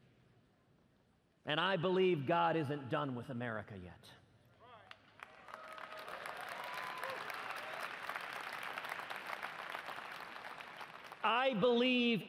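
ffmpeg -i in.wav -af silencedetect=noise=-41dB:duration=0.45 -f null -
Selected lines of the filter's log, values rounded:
silence_start: 0.00
silence_end: 1.47 | silence_duration: 1.47
silence_start: 3.92
silence_end: 4.91 | silence_duration: 1.00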